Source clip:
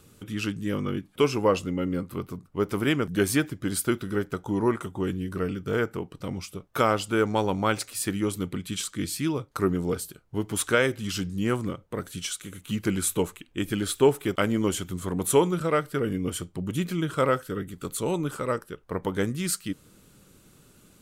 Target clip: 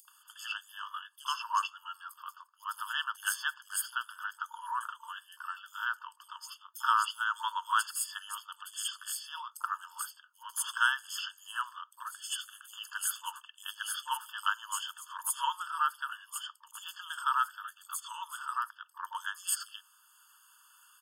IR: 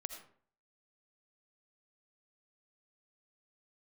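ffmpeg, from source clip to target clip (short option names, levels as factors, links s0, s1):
-filter_complex "[0:a]lowshelf=f=410:g=11,acompressor=mode=upward:threshold=0.0112:ratio=2.5,acrossover=split=730|4800[s0][s1][s2];[s0]adelay=50[s3];[s1]adelay=80[s4];[s3][s4][s2]amix=inputs=3:normalize=0,afftfilt=real='re*eq(mod(floor(b*sr/1024/890),2),1)':imag='im*eq(mod(floor(b*sr/1024/890),2),1)':win_size=1024:overlap=0.75"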